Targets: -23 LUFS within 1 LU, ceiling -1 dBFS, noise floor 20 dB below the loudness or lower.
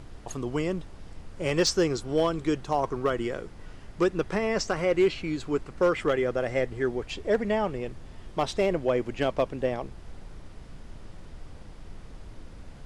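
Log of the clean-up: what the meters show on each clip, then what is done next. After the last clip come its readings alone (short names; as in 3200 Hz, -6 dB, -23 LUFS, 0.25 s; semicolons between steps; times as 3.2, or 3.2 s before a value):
clipped 0.3%; flat tops at -15.5 dBFS; noise floor -46 dBFS; noise floor target -48 dBFS; loudness -28.0 LUFS; peak -15.5 dBFS; loudness target -23.0 LUFS
-> clip repair -15.5 dBFS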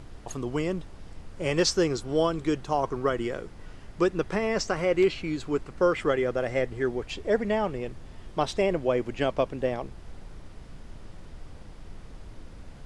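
clipped 0.0%; noise floor -46 dBFS; noise floor target -48 dBFS
-> noise print and reduce 6 dB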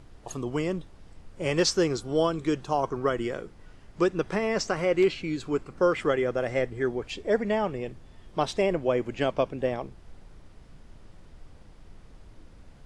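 noise floor -51 dBFS; loudness -27.5 LUFS; peak -11.5 dBFS; loudness target -23.0 LUFS
-> gain +4.5 dB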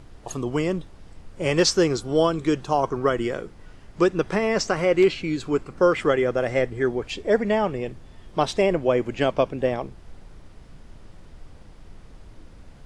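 loudness -23.0 LUFS; peak -7.0 dBFS; noise floor -47 dBFS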